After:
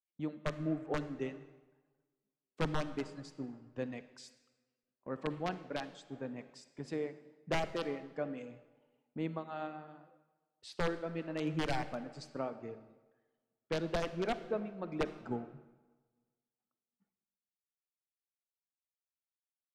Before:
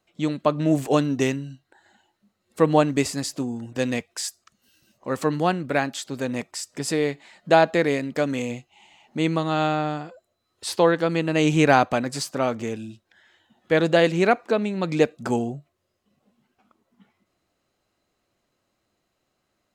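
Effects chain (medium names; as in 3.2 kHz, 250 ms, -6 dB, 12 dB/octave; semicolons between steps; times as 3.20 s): integer overflow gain 9 dB; reverb removal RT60 1.6 s; compression 2:1, threshold -41 dBFS, peak gain reduction 15 dB; tape spacing loss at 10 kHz 24 dB; on a send at -9 dB: reverberation RT60 3.1 s, pre-delay 42 ms; on the sum: three bands expanded up and down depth 100%; trim -2.5 dB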